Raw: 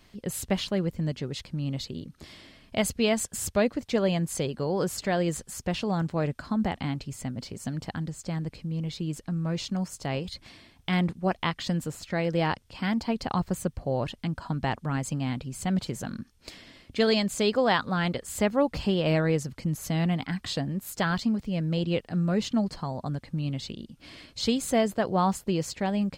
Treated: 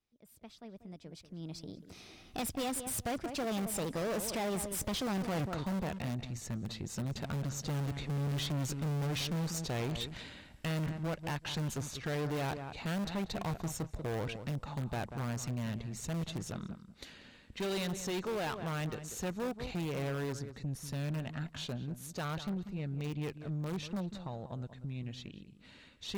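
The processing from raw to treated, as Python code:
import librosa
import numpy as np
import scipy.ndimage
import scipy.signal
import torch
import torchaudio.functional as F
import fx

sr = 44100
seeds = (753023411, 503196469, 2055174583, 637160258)

p1 = fx.doppler_pass(x, sr, speed_mps=48, closest_m=3.7, pass_at_s=5.42)
p2 = fx.recorder_agc(p1, sr, target_db=-24.0, rise_db_per_s=11.0, max_gain_db=30)
p3 = (np.mod(10.0 ** (34.0 / 20.0) * p2 + 1.0, 2.0) - 1.0) / 10.0 ** (34.0 / 20.0)
p4 = p2 + (p3 * librosa.db_to_amplitude(-7.5))
p5 = fx.echo_filtered(p4, sr, ms=189, feedback_pct=15, hz=1900.0, wet_db=-12)
p6 = fx.tube_stage(p5, sr, drive_db=37.0, bias=0.45)
y = p6 * librosa.db_to_amplitude(5.5)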